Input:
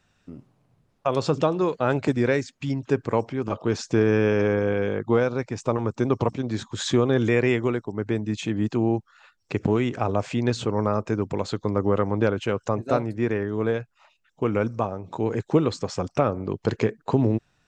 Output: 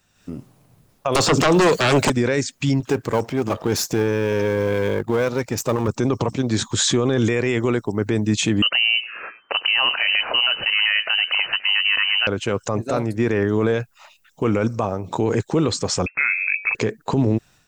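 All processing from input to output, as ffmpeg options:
-filter_complex "[0:a]asettb=1/sr,asplit=3[s0][s1][s2];[s0]atrim=end=1.154[s3];[s1]atrim=start=1.15:end=2.1,asetpts=PTS-STARTPTS,afade=t=in:d=0.004:c=qsin,afade=t=out:st=0.946:d=0.004:c=qsin,highshelf=f=4100:g=12,acrossover=split=200|2200[s4][s5][s6];[s4]acompressor=threshold=0.01:ratio=4[s7];[s5]acompressor=threshold=0.0562:ratio=4[s8];[s6]acompressor=threshold=0.00447:ratio=4[s9];[s7][s8][s9]amix=inputs=3:normalize=0,aeval=exprs='0.188*sin(PI/2*3.55*val(0)/0.188)':c=same[s10];[s2]atrim=start=2.096[s11];[s3][s10]acrossfade=d=0.004:c1=hsin:c2=qsin[s12];[s12][s11]acrossfade=d=0.004:c1=qsin:c2=hsin,asettb=1/sr,asplit=3[s13][s14][s15];[s13]atrim=end=2.804[s16];[s14]atrim=start=2.8:end=5.88,asetpts=PTS-STARTPTS,afade=t=in:d=0.004:c=qsin,afade=t=out:st=3.076:d=0.004:c=qsin,aeval=exprs='if(lt(val(0),0),0.447*val(0),val(0))':c=same,highpass=54[s17];[s15]atrim=start=5.876[s18];[s16][s17]acrossfade=d=0.004:c1=hsin:c2=qsin[s19];[s19][s18]acrossfade=d=0.004:c1=qsin:c2=hsin,asettb=1/sr,asplit=3[s20][s21][s22];[s20]atrim=end=8.624[s23];[s21]atrim=start=8.62:end=12.27,asetpts=PTS-STARTPTS,afade=t=in:d=0.004:c=qsin,afade=t=out:st=3.646:d=0.004:c=qsin,equalizer=f=2000:w=0.76:g=12,asplit=5[s24][s25][s26][s27][s28];[s25]adelay=103,afreqshift=88,volume=0.075[s29];[s26]adelay=206,afreqshift=176,volume=0.0437[s30];[s27]adelay=309,afreqshift=264,volume=0.0251[s31];[s28]adelay=412,afreqshift=352,volume=0.0146[s32];[s24][s29][s30][s31][s32]amix=inputs=5:normalize=0,atrim=end_sample=160965,lowpass=f=2600:t=q:w=0.5098,lowpass=f=2600:t=q:w=0.6013,lowpass=f=2600:t=q:w=0.9,lowpass=f=2600:t=q:w=2.563,afreqshift=-3100[s33];[s22]atrim=start=12.266[s34];[s23][s33]acrossfade=d=0.004:c1=hsin:c2=qsin[s35];[s35][s34]acrossfade=d=0.004:c1=qsin:c2=hsin,asettb=1/sr,asplit=3[s36][s37][s38];[s36]atrim=end=16.064[s39];[s37]atrim=start=16.06:end=16.75,asetpts=PTS-STARTPTS,afade=t=in:d=0.004:c=qsin,afade=t=out:st=0.686:d=0.004:c=qsin,bandreject=f=197.5:t=h:w=4,bandreject=f=395:t=h:w=4,bandreject=f=592.5:t=h:w=4,lowpass=f=2300:t=q:w=0.5098,lowpass=f=2300:t=q:w=0.6013,lowpass=f=2300:t=q:w=0.9,lowpass=f=2300:t=q:w=2.563,afreqshift=-2700[s40];[s38]atrim=start=16.746[s41];[s39][s40]acrossfade=d=0.004:c1=hsin:c2=qsin[s42];[s42][s41]acrossfade=d=0.004:c1=qsin:c2=hsin,aemphasis=mode=production:type=50fm,dynaudnorm=f=130:g=3:m=2.99,alimiter=limit=0.316:level=0:latency=1:release=17"

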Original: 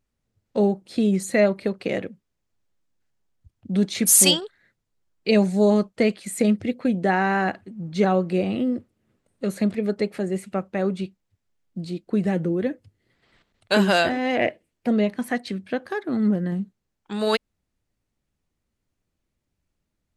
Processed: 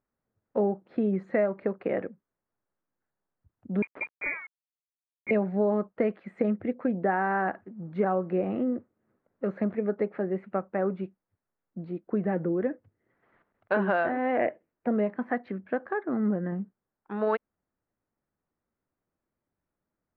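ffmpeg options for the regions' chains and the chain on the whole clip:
-filter_complex "[0:a]asettb=1/sr,asplit=3[s0][s1][s2];[s0]atrim=end=3.824[s3];[s1]atrim=start=3.82:end=5.31,asetpts=PTS-STARTPTS,afade=t=in:d=0.004:c=qsin,afade=t=out:st=1.486:d=0.004:c=qsin,bandreject=f=1900:w=11,lowpass=f=2200:t=q:w=0.5098,lowpass=f=2200:t=q:w=0.6013,lowpass=f=2200:t=q:w=0.9,lowpass=f=2200:t=q:w=2.563,afreqshift=-2600,aeval=exprs='val(0)*gte(abs(val(0)),0.015)':c=same[s4];[s2]atrim=start=5.306[s5];[s3][s4]acrossfade=d=0.004:c1=hsin:c2=qsin[s6];[s6][s5]acrossfade=d=0.004:c1=qsin:c2=hsin,lowpass=f=1600:w=0.5412,lowpass=f=1600:w=1.3066,aemphasis=mode=production:type=bsi,acompressor=threshold=0.0891:ratio=6"

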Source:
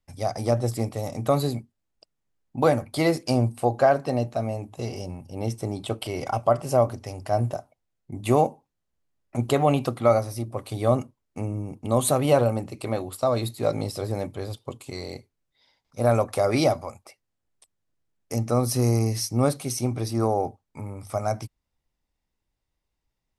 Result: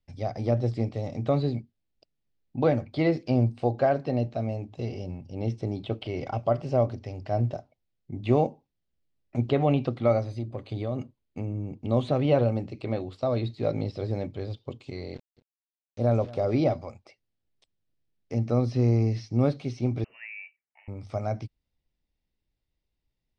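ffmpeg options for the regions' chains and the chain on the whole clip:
-filter_complex "[0:a]asettb=1/sr,asplit=3[s0][s1][s2];[s0]atrim=end=10.254[s3];[s1]atrim=start=10.25:end=11.8,asetpts=PTS-STARTPTS,afade=t=in:d=0.004:c=qsin,afade=t=out:st=1.546:d=0.004:c=qsin,acompressor=threshold=0.0562:ratio=3:attack=3.2:release=140:knee=1:detection=peak,asuperstop=centerf=5500:order=20:qfactor=6.9[s4];[s2]atrim=start=11.796[s5];[s3][s4]acrossfade=d=0.004:c1=hsin:c2=qsin[s6];[s6][s5]acrossfade=d=0.004:c1=qsin:c2=hsin,asettb=1/sr,asplit=3[s7][s8][s9];[s7]atrim=end=15.144[s10];[s8]atrim=start=15.14:end=16.66,asetpts=PTS-STARTPTS,afade=t=in:d=0.004:c=qsin,afade=t=out:st=1.516:d=0.004:c=qsin,equalizer=f=2300:w=0.78:g=-7,aeval=exprs='val(0)*gte(abs(val(0)),0.00841)':c=same,aecho=1:1:226:0.1,atrim=end_sample=67032[s11];[s9]atrim=start=16.656[s12];[s10][s11]acrossfade=d=0.004:c1=hsin:c2=qsin[s13];[s13][s12]acrossfade=d=0.004:c1=qsin:c2=hsin,asettb=1/sr,asplit=3[s14][s15][s16];[s14]atrim=end=20.044[s17];[s15]atrim=start=20.04:end=20.88,asetpts=PTS-STARTPTS,afade=t=in:d=0.004:c=qsin,afade=t=out:st=0.836:d=0.004:c=qsin,highpass=1400,lowpass=f=2600:t=q:w=0.5098,lowpass=f=2600:t=q:w=0.6013,lowpass=f=2600:t=q:w=0.9,lowpass=f=2600:t=q:w=2.563,afreqshift=-3100[s18];[s16]atrim=start=20.876[s19];[s17][s18]acrossfade=d=0.004:c1=hsin:c2=qsin[s20];[s20][s19]acrossfade=d=0.004:c1=qsin:c2=hsin,lowpass=f=4900:w=0.5412,lowpass=f=4900:w=1.3066,acrossover=split=3400[s21][s22];[s22]acompressor=threshold=0.00178:ratio=4:attack=1:release=60[s23];[s21][s23]amix=inputs=2:normalize=0,equalizer=f=1100:w=0.92:g=-9.5"

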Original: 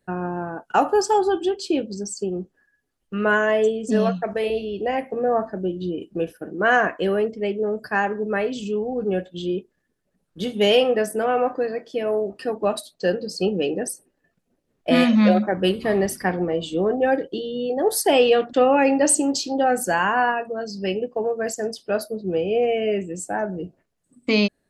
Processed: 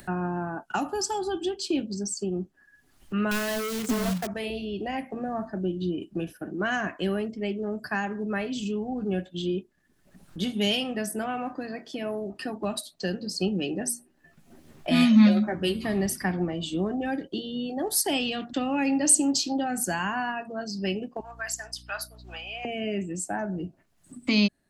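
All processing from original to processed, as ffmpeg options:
-filter_complex "[0:a]asettb=1/sr,asplit=3[s0][s1][s2];[s0]atrim=end=3.314[s3];[s1]atrim=start=3.31:end=4.27,asetpts=PTS-STARTPTS,afade=t=in:d=0.004:c=qsin,afade=t=out:st=0.956:d=0.004:c=qsin,equalizer=f=470:t=o:w=0.68:g=6.5,asoftclip=type=hard:threshold=0.112,acrusher=bits=2:mode=log:mix=0:aa=0.000001[s4];[s2]atrim=start=4.266[s5];[s3][s4]acrossfade=d=0.004:c1=hsin:c2=qsin[s6];[s6][s5]acrossfade=d=0.004:c1=qsin:c2=hsin,asettb=1/sr,asplit=3[s7][s8][s9];[s7]atrim=end=13.794[s10];[s8]atrim=start=13.79:end=15.86,asetpts=PTS-STARTPTS,afade=t=in:d=0.004:c=qsin,afade=t=out:st=2.066:d=0.004:c=qsin,bandreject=f=60:t=h:w=6,bandreject=f=120:t=h:w=6,bandreject=f=180:t=h:w=6,bandreject=f=240:t=h:w=6,bandreject=f=300:t=h:w=6,asplit=2[s11][s12];[s12]adelay=13,volume=0.562[s13];[s11][s13]amix=inputs=2:normalize=0,atrim=end_sample=91287[s14];[s9]atrim=start=15.856[s15];[s10][s14]acrossfade=d=0.004:c1=hsin:c2=qsin[s16];[s16][s15]acrossfade=d=0.004:c1=qsin:c2=hsin,asettb=1/sr,asplit=3[s17][s18][s19];[s17]atrim=end=21.204[s20];[s18]atrim=start=21.2:end=22.65,asetpts=PTS-STARTPTS,afade=t=in:d=0.004:c=qsin,afade=t=out:st=1.446:d=0.004:c=qsin,highpass=f=920:w=0.5412,highpass=f=920:w=1.3066,aeval=exprs='val(0)+0.00282*(sin(2*PI*60*n/s)+sin(2*PI*2*60*n/s)/2+sin(2*PI*3*60*n/s)/3+sin(2*PI*4*60*n/s)/4+sin(2*PI*5*60*n/s)/5)':c=same[s21];[s19]atrim=start=22.646[s22];[s20][s21]acrossfade=d=0.004:c1=hsin:c2=qsin[s23];[s23][s22]acrossfade=d=0.004:c1=qsin:c2=hsin,acrossover=split=290|3000[s24][s25][s26];[s25]acompressor=threshold=0.0447:ratio=6[s27];[s24][s27][s26]amix=inputs=3:normalize=0,equalizer=f=480:t=o:w=0.36:g=-12.5,acompressor=mode=upward:threshold=0.0224:ratio=2.5"

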